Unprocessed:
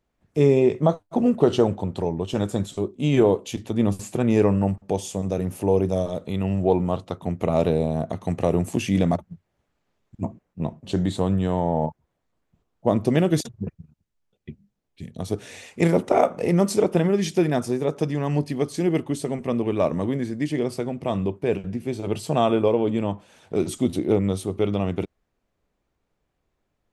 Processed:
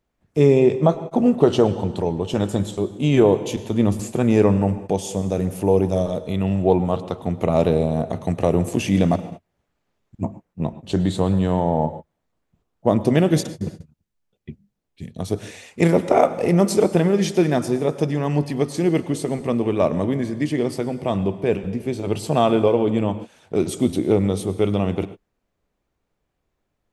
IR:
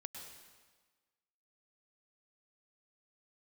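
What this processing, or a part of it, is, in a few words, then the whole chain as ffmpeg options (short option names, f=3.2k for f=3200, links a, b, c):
keyed gated reverb: -filter_complex "[0:a]asplit=3[a][b][c];[1:a]atrim=start_sample=2205[d];[b][d]afir=irnorm=-1:irlink=0[e];[c]apad=whole_len=1187325[f];[e][f]sidechaingate=range=-43dB:threshold=-38dB:ratio=16:detection=peak,volume=-3dB[g];[a][g]amix=inputs=2:normalize=0"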